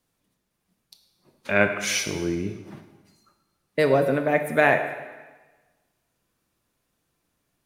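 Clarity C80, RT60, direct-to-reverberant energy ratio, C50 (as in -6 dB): 10.0 dB, 1.2 s, 6.0 dB, 8.5 dB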